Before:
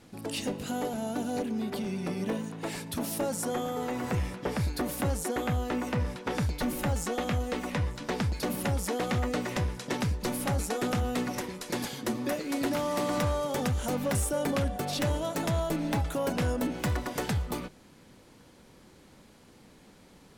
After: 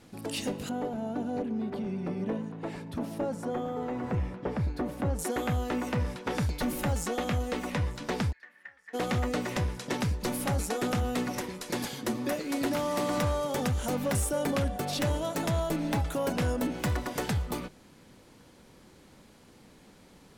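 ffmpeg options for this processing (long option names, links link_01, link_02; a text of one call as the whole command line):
ffmpeg -i in.wav -filter_complex "[0:a]asettb=1/sr,asplit=3[link_01][link_02][link_03];[link_01]atrim=end=0.694[link_04];[link_02]atrim=start=0.69:end=5.19,asetpts=PTS-STARTPTS,afade=type=in:duration=0.004:curve=qsin,afade=type=out:start_time=4.496:duration=0.004:curve=qsin,lowpass=frequency=1100:poles=1[link_05];[link_03]atrim=start=5.186[link_06];[link_04][link_05]acrossfade=duration=0.004:curve1=hsin:curve2=qsin[link_07];[link_07][link_06]acrossfade=duration=0.004:curve1=qsin:curve2=hsin,asplit=3[link_08][link_09][link_10];[link_08]afade=type=out:start_time=8.31:duration=0.02[link_11];[link_09]bandpass=frequency=1800:width_type=q:width=15,afade=type=in:start_time=8.31:duration=0.02,afade=type=out:start_time=8.93:duration=0.02[link_12];[link_10]afade=type=in:start_time=8.93:duration=0.02[link_13];[link_11][link_12][link_13]amix=inputs=3:normalize=0" out.wav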